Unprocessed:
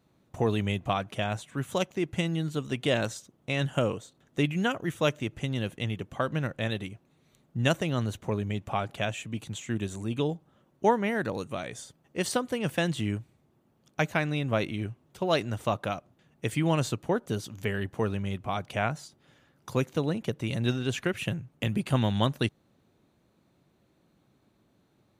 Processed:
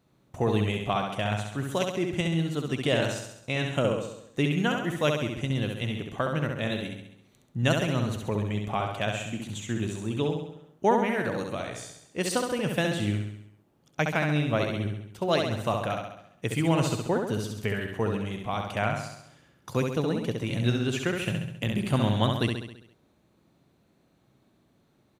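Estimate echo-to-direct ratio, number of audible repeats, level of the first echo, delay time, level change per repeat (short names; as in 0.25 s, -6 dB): -3.0 dB, 6, -4.5 dB, 67 ms, -5.0 dB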